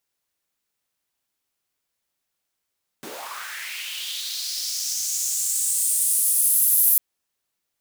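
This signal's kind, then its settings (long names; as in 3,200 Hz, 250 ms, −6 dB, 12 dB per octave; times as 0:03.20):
filter sweep on noise pink, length 3.95 s highpass, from 210 Hz, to 12,000 Hz, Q 3.4, linear, gain ramp +24 dB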